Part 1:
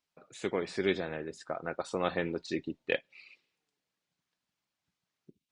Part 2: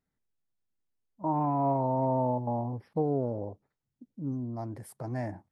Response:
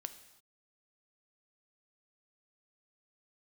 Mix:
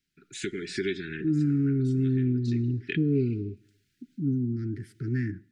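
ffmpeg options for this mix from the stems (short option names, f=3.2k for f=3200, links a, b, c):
-filter_complex "[0:a]acompressor=threshold=-39dB:ratio=4,volume=2dB,asplit=2[a][b];[b]volume=-13.5dB[c];[1:a]lowpass=3.9k,volume=-4dB,asplit=3[d][e][f];[e]volume=-6.5dB[g];[f]apad=whole_len=243078[h];[a][h]sidechaincompress=threshold=-52dB:ratio=8:attack=16:release=181[i];[2:a]atrim=start_sample=2205[j];[c][g]amix=inputs=2:normalize=0[k];[k][j]afir=irnorm=-1:irlink=0[l];[i][d][l]amix=inputs=3:normalize=0,dynaudnorm=f=140:g=5:m=8.5dB,asuperstop=centerf=760:order=20:qfactor=0.77"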